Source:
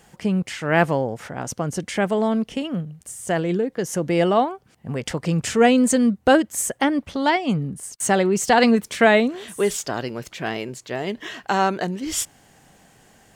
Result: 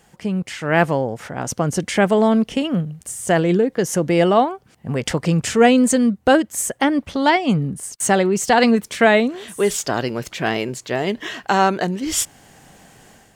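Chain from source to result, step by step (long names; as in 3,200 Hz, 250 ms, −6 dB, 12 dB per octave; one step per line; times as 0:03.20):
automatic gain control gain up to 8 dB
level −1.5 dB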